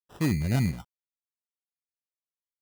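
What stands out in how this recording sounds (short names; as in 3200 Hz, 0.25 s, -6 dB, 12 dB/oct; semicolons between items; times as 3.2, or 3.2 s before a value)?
a quantiser's noise floor 10-bit, dither none; phasing stages 12, 0.98 Hz, lowest notch 640–2000 Hz; aliases and images of a low sample rate 2200 Hz, jitter 0%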